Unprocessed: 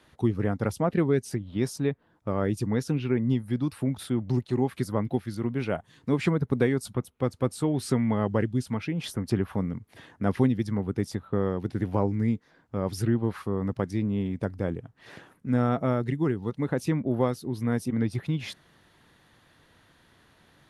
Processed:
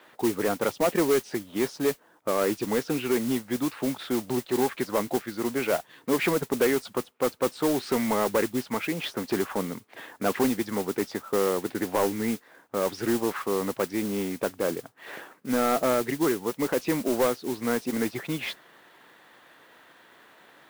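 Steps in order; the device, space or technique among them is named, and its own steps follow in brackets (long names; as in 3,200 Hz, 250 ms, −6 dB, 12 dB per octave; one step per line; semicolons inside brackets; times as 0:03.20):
carbon microphone (band-pass filter 390–3,100 Hz; soft clipping −25 dBFS, distortion −12 dB; noise that follows the level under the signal 13 dB)
level +8.5 dB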